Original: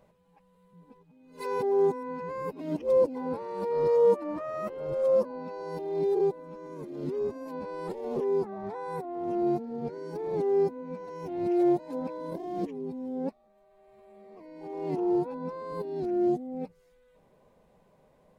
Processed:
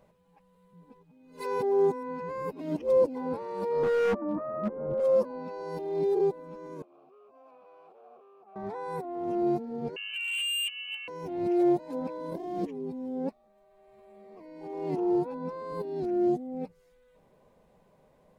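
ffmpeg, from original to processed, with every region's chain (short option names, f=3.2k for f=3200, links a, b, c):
-filter_complex "[0:a]asettb=1/sr,asplit=3[a][b][c];[a]atrim=end=3.834[d];[b]atrim=start=3.83:end=5,asetpts=PTS-STARTPTS,afade=t=in:d=0.004:c=qsin,afade=t=out:st=1.166:d=0.004:c=qsin,lowpass=f=1.5k:w=0.5412,lowpass=f=1.5k:w=1.3066,equalizer=f=220:w=2.8:g=13,asoftclip=type=hard:threshold=-23.5dB[e];[c]atrim=start=4.996[f];[d][e]acrossfade=d=0.004:c1=hsin:c2=qsin[g];[g][f]acrossfade=d=0.004:c1=qsin:c2=hsin,asettb=1/sr,asplit=3[h][i][j];[h]atrim=end=6.824[k];[i]atrim=start=6.82:end=8.56,asetpts=PTS-STARTPTS,afade=t=in:d=0.004:c=qsin,afade=t=out:st=1.736:d=0.004:c=qsin,acompressor=threshold=-35dB:ratio=10:attack=3.2:release=140:knee=1:detection=peak,asoftclip=type=hard:threshold=-38dB,asplit=3[l][m][n];[l]bandpass=f=730:t=q:w=8,volume=0dB[o];[m]bandpass=f=1.09k:t=q:w=8,volume=-6dB[p];[n]bandpass=f=2.44k:t=q:w=8,volume=-9dB[q];[o][p][q]amix=inputs=3:normalize=0[r];[j]atrim=start=8.556[s];[k][r]acrossfade=d=0.004:c1=hsin:c2=qsin[t];[t][s]acrossfade=d=0.004:c1=qsin:c2=hsin,asettb=1/sr,asplit=3[u][v][w];[u]atrim=end=9.964[x];[v]atrim=start=9.96:end=11.08,asetpts=PTS-STARTPTS,afade=t=in:d=0.004:c=qsin,afade=t=out:st=1.116:d=0.004:c=qsin,lowpass=f=2.7k:t=q:w=0.5098,lowpass=f=2.7k:t=q:w=0.6013,lowpass=f=2.7k:t=q:w=0.9,lowpass=f=2.7k:t=q:w=2.563,afreqshift=-3200,equalizer=f=1.6k:t=o:w=0.27:g=6.5,volume=29dB,asoftclip=hard,volume=-29dB[y];[w]atrim=start=11.076[z];[x][y]acrossfade=d=0.004:c1=hsin:c2=qsin[aa];[aa][z]acrossfade=d=0.004:c1=qsin:c2=hsin"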